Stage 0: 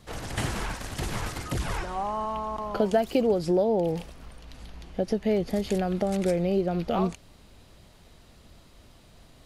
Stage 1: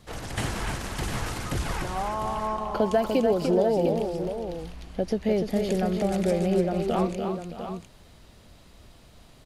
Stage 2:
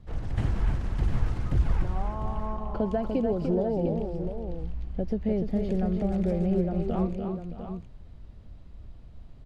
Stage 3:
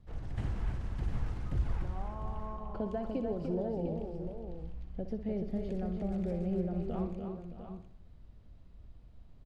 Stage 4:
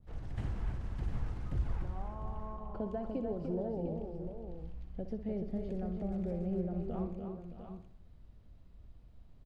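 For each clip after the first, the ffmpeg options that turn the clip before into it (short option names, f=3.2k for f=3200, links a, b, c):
-af "aecho=1:1:295|619|701:0.501|0.168|0.335"
-af "aemphasis=mode=reproduction:type=riaa,volume=-8.5dB"
-af "aecho=1:1:62|124|186|248|310:0.266|0.133|0.0665|0.0333|0.0166,volume=-8.5dB"
-af "adynamicequalizer=threshold=0.00224:dfrequency=1600:dqfactor=0.7:tfrequency=1600:tqfactor=0.7:attack=5:release=100:ratio=0.375:range=2.5:mode=cutabove:tftype=highshelf,volume=-2dB"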